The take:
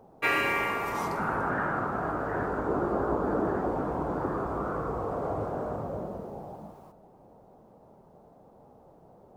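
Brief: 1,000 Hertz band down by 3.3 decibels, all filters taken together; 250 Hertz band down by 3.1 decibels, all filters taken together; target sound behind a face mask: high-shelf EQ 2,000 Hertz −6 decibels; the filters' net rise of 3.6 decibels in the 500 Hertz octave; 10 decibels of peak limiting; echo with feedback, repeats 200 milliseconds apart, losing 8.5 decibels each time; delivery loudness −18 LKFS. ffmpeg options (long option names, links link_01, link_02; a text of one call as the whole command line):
ffmpeg -i in.wav -af "equalizer=frequency=250:width_type=o:gain=-8,equalizer=frequency=500:width_type=o:gain=8.5,equalizer=frequency=1000:width_type=o:gain=-5.5,alimiter=level_in=0.5dB:limit=-24dB:level=0:latency=1,volume=-0.5dB,highshelf=frequency=2000:gain=-6,aecho=1:1:200|400|600|800:0.376|0.143|0.0543|0.0206,volume=15.5dB" out.wav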